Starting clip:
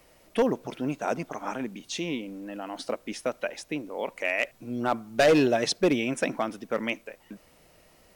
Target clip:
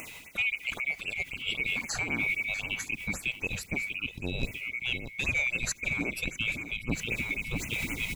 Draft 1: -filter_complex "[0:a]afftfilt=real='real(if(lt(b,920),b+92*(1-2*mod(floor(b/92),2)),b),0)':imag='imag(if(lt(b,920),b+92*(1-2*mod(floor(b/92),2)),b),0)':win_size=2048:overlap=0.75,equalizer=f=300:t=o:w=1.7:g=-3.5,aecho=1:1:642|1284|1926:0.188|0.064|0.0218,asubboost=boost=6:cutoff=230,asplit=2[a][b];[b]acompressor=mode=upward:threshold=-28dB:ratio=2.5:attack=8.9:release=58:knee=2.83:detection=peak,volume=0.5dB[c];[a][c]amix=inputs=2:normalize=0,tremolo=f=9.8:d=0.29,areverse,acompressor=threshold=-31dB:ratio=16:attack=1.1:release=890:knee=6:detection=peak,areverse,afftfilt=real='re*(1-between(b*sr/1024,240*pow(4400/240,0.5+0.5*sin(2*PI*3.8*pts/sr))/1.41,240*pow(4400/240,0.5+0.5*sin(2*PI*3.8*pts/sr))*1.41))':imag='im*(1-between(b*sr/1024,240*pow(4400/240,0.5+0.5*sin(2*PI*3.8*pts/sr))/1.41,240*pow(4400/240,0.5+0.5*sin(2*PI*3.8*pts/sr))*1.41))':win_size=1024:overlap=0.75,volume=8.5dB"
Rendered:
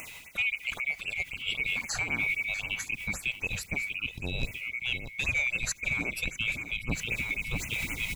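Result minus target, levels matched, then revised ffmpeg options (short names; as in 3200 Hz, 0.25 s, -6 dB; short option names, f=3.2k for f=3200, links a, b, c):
250 Hz band -4.0 dB
-filter_complex "[0:a]afftfilt=real='real(if(lt(b,920),b+92*(1-2*mod(floor(b/92),2)),b),0)':imag='imag(if(lt(b,920),b+92*(1-2*mod(floor(b/92),2)),b),0)':win_size=2048:overlap=0.75,equalizer=f=300:t=o:w=1.7:g=3,aecho=1:1:642|1284|1926:0.188|0.064|0.0218,asubboost=boost=6:cutoff=230,asplit=2[a][b];[b]acompressor=mode=upward:threshold=-28dB:ratio=2.5:attack=8.9:release=58:knee=2.83:detection=peak,volume=0.5dB[c];[a][c]amix=inputs=2:normalize=0,tremolo=f=9.8:d=0.29,areverse,acompressor=threshold=-31dB:ratio=16:attack=1.1:release=890:knee=6:detection=peak,areverse,afftfilt=real='re*(1-between(b*sr/1024,240*pow(4400/240,0.5+0.5*sin(2*PI*3.8*pts/sr))/1.41,240*pow(4400/240,0.5+0.5*sin(2*PI*3.8*pts/sr))*1.41))':imag='im*(1-between(b*sr/1024,240*pow(4400/240,0.5+0.5*sin(2*PI*3.8*pts/sr))/1.41,240*pow(4400/240,0.5+0.5*sin(2*PI*3.8*pts/sr))*1.41))':win_size=1024:overlap=0.75,volume=8.5dB"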